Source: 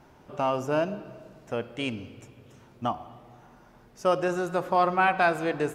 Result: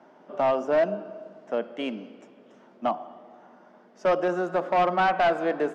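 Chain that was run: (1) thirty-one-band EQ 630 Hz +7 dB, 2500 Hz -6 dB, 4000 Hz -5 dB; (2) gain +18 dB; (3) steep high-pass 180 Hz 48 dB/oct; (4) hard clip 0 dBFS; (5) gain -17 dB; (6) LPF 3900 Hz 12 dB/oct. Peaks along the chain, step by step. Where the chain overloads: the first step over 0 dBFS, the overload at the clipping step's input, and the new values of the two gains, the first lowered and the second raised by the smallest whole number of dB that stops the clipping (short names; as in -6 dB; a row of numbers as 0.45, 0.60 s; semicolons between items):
-8.5, +9.5, +8.5, 0.0, -17.0, -16.5 dBFS; step 2, 8.5 dB; step 2 +9 dB, step 5 -8 dB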